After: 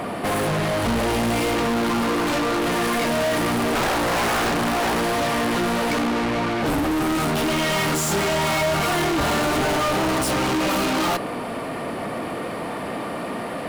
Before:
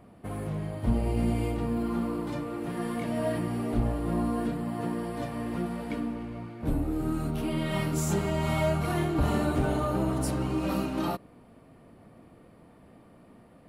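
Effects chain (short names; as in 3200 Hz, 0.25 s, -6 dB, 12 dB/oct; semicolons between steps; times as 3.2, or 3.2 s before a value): 3.75–5.08 wrapped overs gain 25.5 dB; overdrive pedal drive 40 dB, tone 7100 Hz, clips at -15.5 dBFS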